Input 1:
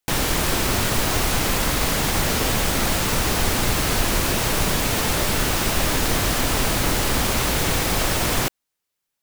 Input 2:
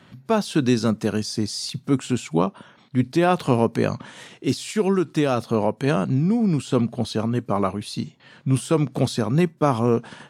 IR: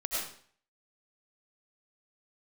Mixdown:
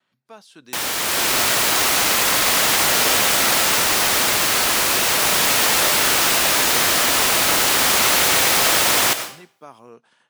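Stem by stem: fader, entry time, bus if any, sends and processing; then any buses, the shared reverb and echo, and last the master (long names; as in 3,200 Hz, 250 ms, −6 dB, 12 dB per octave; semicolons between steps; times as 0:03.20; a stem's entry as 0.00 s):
−1.5 dB, 0.65 s, send −11.5 dB, automatic gain control
−16.5 dB, 0.00 s, no send, noise gate with hold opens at −45 dBFS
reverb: on, RT60 0.50 s, pre-delay 60 ms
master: high-pass filter 920 Hz 6 dB per octave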